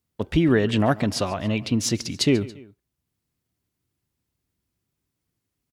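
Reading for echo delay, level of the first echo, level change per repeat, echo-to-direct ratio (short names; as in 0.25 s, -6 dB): 0.14 s, -19.5 dB, -5.5 dB, -18.5 dB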